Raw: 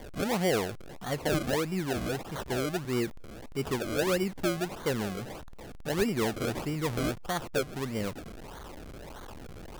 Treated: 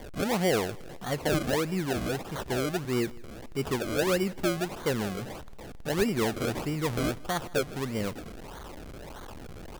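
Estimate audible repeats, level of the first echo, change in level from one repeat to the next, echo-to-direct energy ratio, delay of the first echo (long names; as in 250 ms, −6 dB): 2, −23.0 dB, −6.5 dB, −22.0 dB, 160 ms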